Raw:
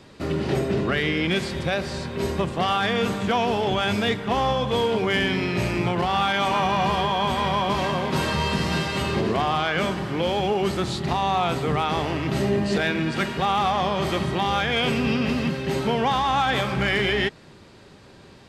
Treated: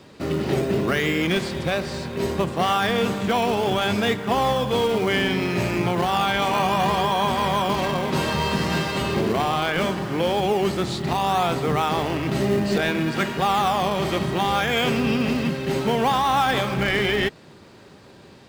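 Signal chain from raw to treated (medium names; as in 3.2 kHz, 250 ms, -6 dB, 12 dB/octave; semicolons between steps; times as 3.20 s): high-pass 110 Hz 6 dB/octave; in parallel at -10 dB: decimation with a swept rate 18×, swing 100% 0.66 Hz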